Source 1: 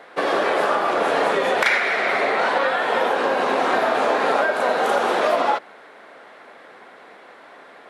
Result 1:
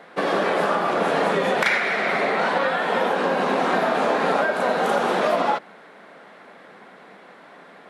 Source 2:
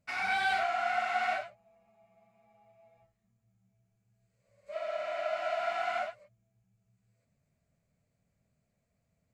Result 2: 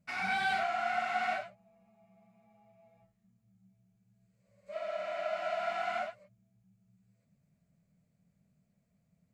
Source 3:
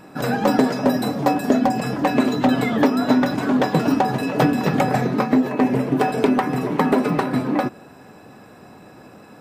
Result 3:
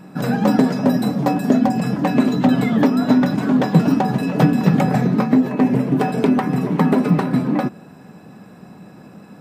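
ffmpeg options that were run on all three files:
ffmpeg -i in.wav -af "equalizer=frequency=180:width_type=o:width=0.76:gain=12.5,volume=-2dB" out.wav

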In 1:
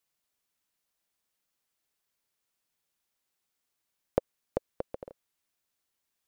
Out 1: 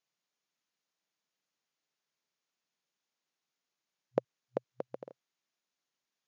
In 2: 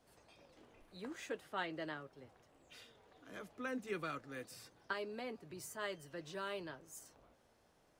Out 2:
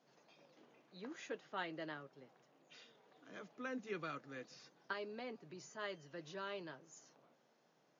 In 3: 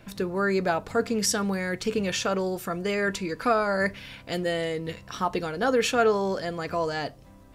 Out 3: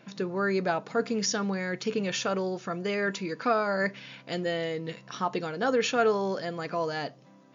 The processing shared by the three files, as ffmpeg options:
ffmpeg -i in.wav -af "afftfilt=real='re*between(b*sr/4096,120,7100)':imag='im*between(b*sr/4096,120,7100)':win_size=4096:overlap=0.75,volume=-2.5dB" out.wav

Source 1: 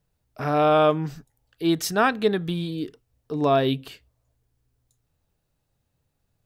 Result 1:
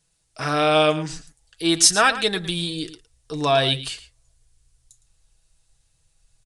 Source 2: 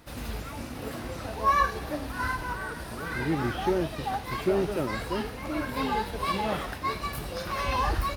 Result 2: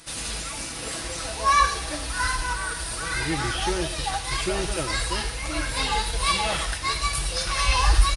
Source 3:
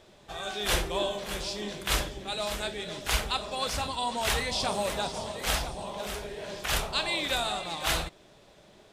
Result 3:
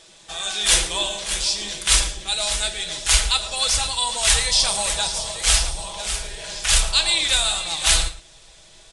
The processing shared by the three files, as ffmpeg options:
ffmpeg -i in.wav -filter_complex "[0:a]aecho=1:1:6.1:0.43,asplit=2[link_01][link_02];[link_02]adelay=110.8,volume=-14dB,highshelf=frequency=4000:gain=-2.49[link_03];[link_01][link_03]amix=inputs=2:normalize=0,asubboost=boost=8.5:cutoff=69,crystalizer=i=8.5:c=0,asplit=2[link_04][link_05];[link_05]asoftclip=type=tanh:threshold=-5dB,volume=-5dB[link_06];[link_04][link_06]amix=inputs=2:normalize=0,aresample=22050,aresample=44100,volume=-6dB" out.wav

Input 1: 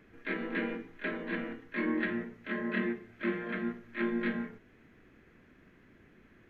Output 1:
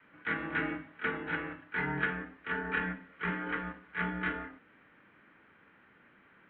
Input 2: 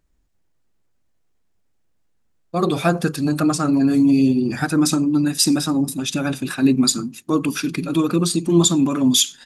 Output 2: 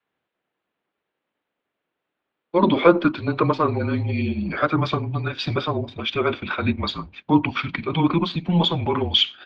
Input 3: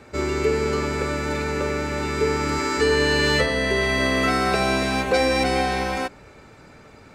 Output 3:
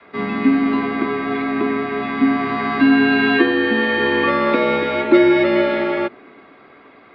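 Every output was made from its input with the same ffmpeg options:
ffmpeg -i in.wav -af "adynamicequalizer=threshold=0.0141:dfrequency=480:dqfactor=2.2:tfrequency=480:tqfactor=2.2:attack=5:release=100:ratio=0.375:range=4:mode=boostabove:tftype=bell,highpass=frequency=440:width_type=q:width=0.5412,highpass=frequency=440:width_type=q:width=1.307,lowpass=frequency=3600:width_type=q:width=0.5176,lowpass=frequency=3600:width_type=q:width=0.7071,lowpass=frequency=3600:width_type=q:width=1.932,afreqshift=-170,volume=4dB" out.wav

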